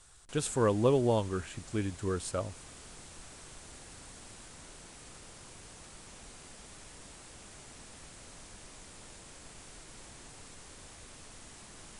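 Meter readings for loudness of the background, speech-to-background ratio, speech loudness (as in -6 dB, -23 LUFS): -50.0 LUFS, 18.5 dB, -31.5 LUFS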